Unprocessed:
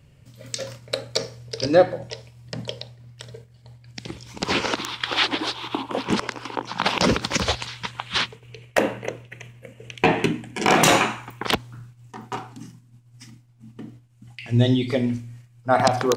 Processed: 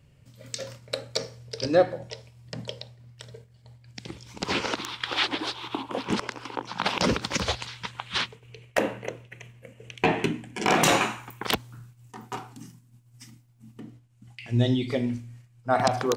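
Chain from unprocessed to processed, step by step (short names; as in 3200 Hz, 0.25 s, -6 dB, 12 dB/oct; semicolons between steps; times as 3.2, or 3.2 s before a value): 11.01–13.8 high shelf 9800 Hz +12 dB; gain -4.5 dB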